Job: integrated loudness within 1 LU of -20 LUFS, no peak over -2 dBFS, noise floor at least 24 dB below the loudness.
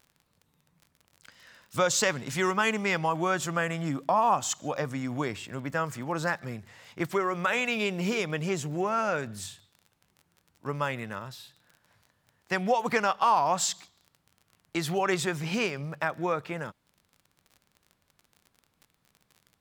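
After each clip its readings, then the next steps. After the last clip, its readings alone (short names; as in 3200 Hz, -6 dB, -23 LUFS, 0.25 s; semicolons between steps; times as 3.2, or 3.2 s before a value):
ticks 33/s; loudness -29.0 LUFS; peak -11.5 dBFS; loudness target -20.0 LUFS
-> de-click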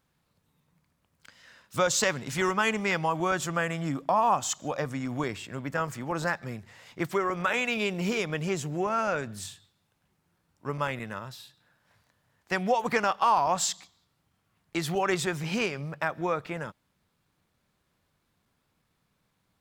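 ticks 0.20/s; loudness -28.5 LUFS; peak -11.5 dBFS; loudness target -20.0 LUFS
-> gain +8.5 dB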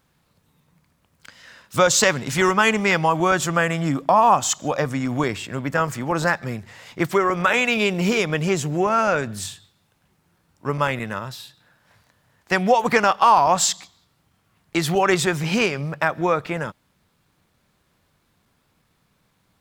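loudness -20.5 LUFS; peak -3.0 dBFS; noise floor -67 dBFS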